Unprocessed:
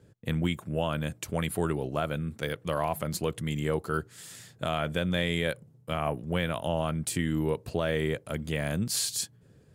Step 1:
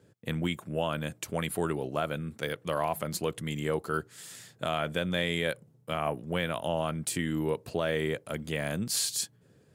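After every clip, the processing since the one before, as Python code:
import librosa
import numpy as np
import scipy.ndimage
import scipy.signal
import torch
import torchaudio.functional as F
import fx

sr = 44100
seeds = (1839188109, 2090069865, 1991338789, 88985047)

y = fx.highpass(x, sr, hz=180.0, slope=6)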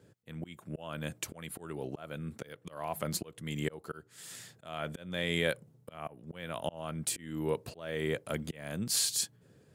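y = fx.auto_swell(x, sr, attack_ms=418.0)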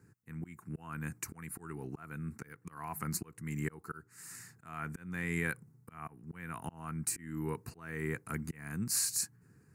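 y = fx.fixed_phaser(x, sr, hz=1400.0, stages=4)
y = y * 10.0 ** (1.0 / 20.0)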